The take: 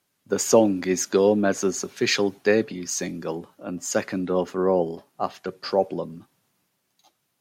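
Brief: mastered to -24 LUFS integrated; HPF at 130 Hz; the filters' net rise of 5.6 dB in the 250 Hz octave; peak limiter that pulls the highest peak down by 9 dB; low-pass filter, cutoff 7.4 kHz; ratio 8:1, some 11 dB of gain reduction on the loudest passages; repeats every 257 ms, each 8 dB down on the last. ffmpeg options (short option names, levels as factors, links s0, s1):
-af "highpass=130,lowpass=7400,equalizer=f=250:t=o:g=8,acompressor=threshold=0.112:ratio=8,alimiter=limit=0.119:level=0:latency=1,aecho=1:1:257|514|771|1028|1285:0.398|0.159|0.0637|0.0255|0.0102,volume=1.58"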